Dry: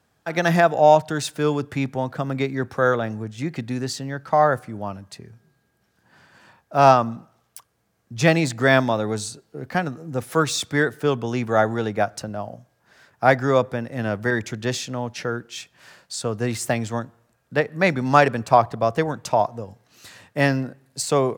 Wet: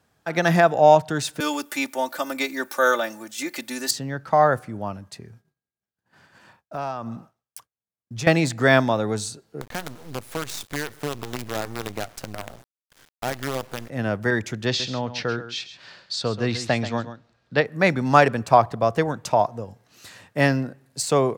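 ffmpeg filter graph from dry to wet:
ffmpeg -i in.wav -filter_complex "[0:a]asettb=1/sr,asplit=3[link_01][link_02][link_03];[link_01]atrim=end=1.404[link_04];[link_02]atrim=start=1.4:end=3.91,asetpts=PTS-STARTPTS,afade=type=in:duration=0.004:curve=qsin,afade=type=out:start_time=2.506:duration=0.004:curve=qsin,highpass=250,aemphasis=mode=production:type=riaa,aecho=1:1:3.4:0.81,atrim=end_sample=110691[link_05];[link_03]atrim=start=3.906[link_06];[link_04][link_05]acrossfade=duration=0.004:curve1=hsin:curve2=qsin[link_07];[link_07][link_06]acrossfade=duration=0.004:curve1=qsin:curve2=hsin,asettb=1/sr,asplit=3[link_08][link_09][link_10];[link_08]atrim=end=4.994[link_11];[link_09]atrim=start=4.99:end=8.27,asetpts=PTS-STARTPTS,afade=type=in:duration=0.004:curve=qsin,afade=type=out:start_time=3.276:duration=0.004:curve=qsin,agate=range=-33dB:threshold=-52dB:ratio=3:release=100:detection=peak,acompressor=threshold=-27dB:ratio=6:attack=3.2:release=140:knee=1:detection=peak[link_12];[link_10]atrim=start=8.266[link_13];[link_11][link_12]acrossfade=duration=0.004:curve1=hsin:curve2=qsin[link_14];[link_14][link_13]acrossfade=duration=0.004:curve1=qsin:curve2=hsin,asettb=1/sr,asplit=3[link_15][link_16][link_17];[link_15]atrim=end=9.614[link_18];[link_16]atrim=start=9.61:end=13.9,asetpts=PTS-STARTPTS,afade=type=in:duration=0.004:curve=qsin,afade=type=out:start_time=4.286:duration=0.004:curve=qsin,acompressor=threshold=-30dB:ratio=2.5:attack=3.2:release=140:knee=1:detection=peak,acrusher=bits=5:dc=4:mix=0:aa=0.000001[link_19];[link_17]atrim=start=13.896[link_20];[link_18][link_19]acrossfade=duration=0.004:curve1=hsin:curve2=qsin[link_21];[link_21][link_20]acrossfade=duration=0.004:curve1=qsin:curve2=hsin,asettb=1/sr,asplit=3[link_22][link_23][link_24];[link_22]atrim=end=14.664[link_25];[link_23]atrim=start=14.66:end=17.65,asetpts=PTS-STARTPTS,afade=type=in:duration=0.004:curve=qsin,afade=type=out:start_time=2.986:duration=0.004:curve=qsin,lowpass=frequency=4300:width_type=q:width=2.3,aecho=1:1:133:0.237,atrim=end_sample=131859[link_26];[link_24]atrim=start=17.646[link_27];[link_25][link_26]acrossfade=duration=0.004:curve1=hsin:curve2=qsin[link_28];[link_28][link_27]acrossfade=duration=0.004:curve1=qsin:curve2=hsin" out.wav

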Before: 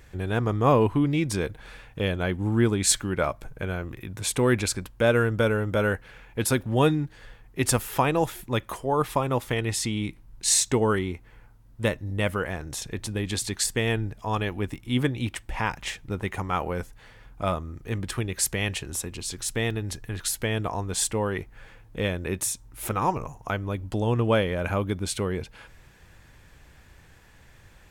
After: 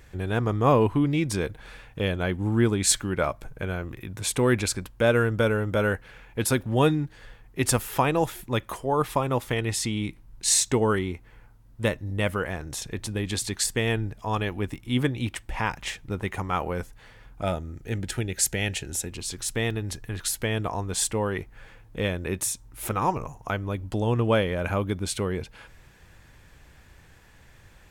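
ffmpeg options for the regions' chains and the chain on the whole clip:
ffmpeg -i in.wav -filter_complex "[0:a]asettb=1/sr,asplit=3[link_01][link_02][link_03];[link_01]atrim=end=17.424[link_04];[link_02]atrim=start=17.42:end=19.1,asetpts=PTS-STARTPTS,afade=type=in:duration=0.004:curve=qsin,afade=type=out:start_time=1.676:duration=0.004:curve=qsin,asuperstop=centerf=1100:order=4:qfactor=3.2,equalizer=frequency=6900:width_type=o:width=0.35:gain=4[link_05];[link_03]atrim=start=19.096[link_06];[link_04][link_05]acrossfade=duration=0.004:curve1=hsin:curve2=qsin[link_07];[link_07][link_06]acrossfade=duration=0.004:curve1=qsin:curve2=hsin" out.wav

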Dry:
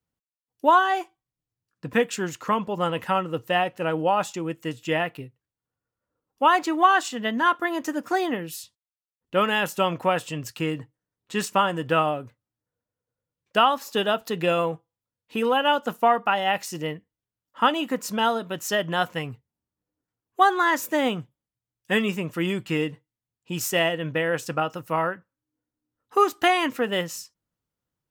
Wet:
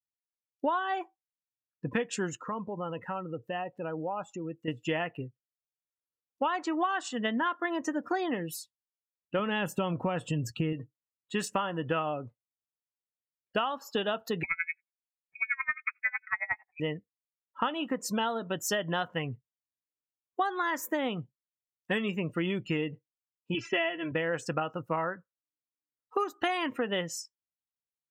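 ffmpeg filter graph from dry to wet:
ffmpeg -i in.wav -filter_complex "[0:a]asettb=1/sr,asplit=3[link_01][link_02][link_03];[link_01]atrim=end=2.374[link_04];[link_02]atrim=start=2.37:end=4.68,asetpts=PTS-STARTPTS,afade=type=in:duration=0.004:curve=qsin,afade=type=out:start_time=2.306:duration=0.004:curve=qsin,highshelf=frequency=2200:gain=-4.5,acompressor=threshold=-39dB:ratio=2:attack=3.2:release=140:knee=1:detection=peak[link_05];[link_03]atrim=start=4.676[link_06];[link_04][link_05]acrossfade=duration=0.004:curve1=hsin:curve2=qsin[link_07];[link_07][link_06]acrossfade=duration=0.004:curve1=qsin:curve2=hsin,asettb=1/sr,asplit=3[link_08][link_09][link_10];[link_08]atrim=end=9.394[link_11];[link_09]atrim=start=9.39:end=10.73,asetpts=PTS-STARTPTS,afade=type=in:duration=0.004:curve=qsin,afade=type=out:start_time=1.336:duration=0.004:curve=qsin,lowshelf=frequency=310:gain=11,acompressor=threshold=-23dB:ratio=1.5:attack=3.2:release=140:knee=1:detection=peak[link_12];[link_10]atrim=start=10.726[link_13];[link_11][link_12]acrossfade=duration=0.004:curve1=hsin:curve2=qsin[link_14];[link_14][link_13]acrossfade=duration=0.004:curve1=qsin:curve2=hsin,asettb=1/sr,asplit=3[link_15][link_16][link_17];[link_15]atrim=end=14.434[link_18];[link_16]atrim=start=14.43:end=16.8,asetpts=PTS-STARTPTS,afade=type=in:duration=0.004:curve=qsin,afade=type=out:start_time=2.366:duration=0.004:curve=qsin,asplit=2[link_19][link_20];[link_20]highpass=frequency=720:poles=1,volume=9dB,asoftclip=type=tanh:threshold=-8dB[link_21];[link_19][link_21]amix=inputs=2:normalize=0,lowpass=frequency=1200:poles=1,volume=-6dB,lowpass=frequency=2300:width_type=q:width=0.5098,lowpass=frequency=2300:width_type=q:width=0.6013,lowpass=frequency=2300:width_type=q:width=0.9,lowpass=frequency=2300:width_type=q:width=2.563,afreqshift=-2700,aeval=exprs='val(0)*pow(10,-30*(0.5-0.5*cos(2*PI*11*n/s))/20)':channel_layout=same[link_22];[link_17]atrim=start=16.796[link_23];[link_18][link_22]acrossfade=duration=0.004:curve1=hsin:curve2=qsin[link_24];[link_24][link_23]acrossfade=duration=0.004:curve1=qsin:curve2=hsin,asettb=1/sr,asplit=3[link_25][link_26][link_27];[link_25]atrim=end=23.544[link_28];[link_26]atrim=start=23.54:end=24.12,asetpts=PTS-STARTPTS,afade=type=in:duration=0.004:curve=qsin,afade=type=out:start_time=0.576:duration=0.004:curve=qsin,lowpass=frequency=2500:width_type=q:width=1.6,aecho=1:1:3:0.92,atrim=end_sample=25578[link_29];[link_27]atrim=start=24.116[link_30];[link_28][link_29]acrossfade=duration=0.004:curve1=hsin:curve2=qsin[link_31];[link_31][link_30]acrossfade=duration=0.004:curve1=qsin:curve2=hsin,afftdn=noise_reduction=26:noise_floor=-40,acompressor=threshold=-27dB:ratio=6" out.wav

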